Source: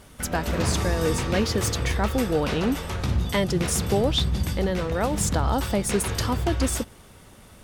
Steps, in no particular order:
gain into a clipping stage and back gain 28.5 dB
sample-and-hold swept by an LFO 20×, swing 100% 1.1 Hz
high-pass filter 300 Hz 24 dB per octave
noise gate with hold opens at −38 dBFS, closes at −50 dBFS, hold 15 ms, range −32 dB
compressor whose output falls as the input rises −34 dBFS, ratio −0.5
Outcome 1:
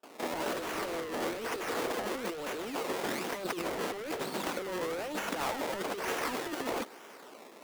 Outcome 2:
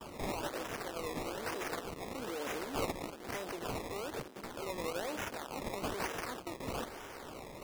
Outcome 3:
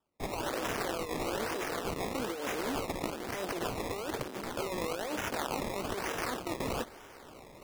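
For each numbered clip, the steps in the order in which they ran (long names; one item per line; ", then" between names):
sample-and-hold swept by an LFO, then high-pass filter, then gain into a clipping stage and back, then compressor whose output falls as the input rises, then noise gate with hold
gain into a clipping stage and back, then compressor whose output falls as the input rises, then high-pass filter, then noise gate with hold, then sample-and-hold swept by an LFO
gain into a clipping stage and back, then high-pass filter, then noise gate with hold, then sample-and-hold swept by an LFO, then compressor whose output falls as the input rises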